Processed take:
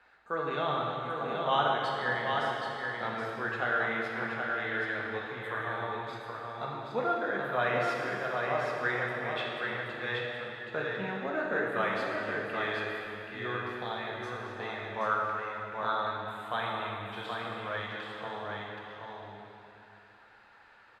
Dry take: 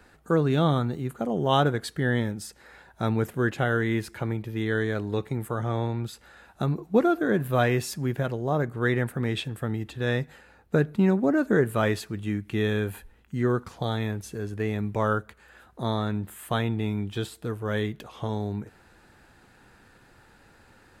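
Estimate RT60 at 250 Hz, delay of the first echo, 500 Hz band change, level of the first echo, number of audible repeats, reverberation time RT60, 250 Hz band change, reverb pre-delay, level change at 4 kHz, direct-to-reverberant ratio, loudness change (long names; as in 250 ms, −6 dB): 2.9 s, 776 ms, −6.5 dB, −4.5 dB, 1, 2.9 s, −14.5 dB, 4 ms, −2.5 dB, −4.5 dB, −6.0 dB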